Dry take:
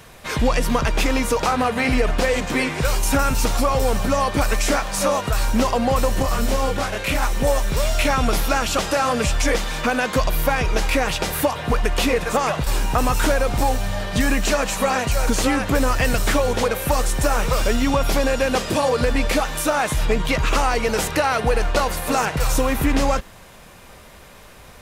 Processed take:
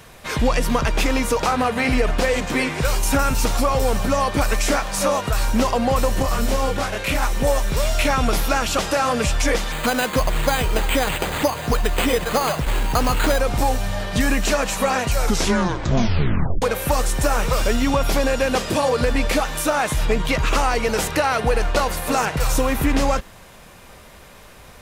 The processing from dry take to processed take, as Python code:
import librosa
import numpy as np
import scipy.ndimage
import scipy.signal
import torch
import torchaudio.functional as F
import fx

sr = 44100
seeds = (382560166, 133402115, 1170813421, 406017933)

y = fx.resample_bad(x, sr, factor=8, down='none', up='hold', at=(9.72, 13.4))
y = fx.edit(y, sr, fx.tape_stop(start_s=15.17, length_s=1.45), tone=tone)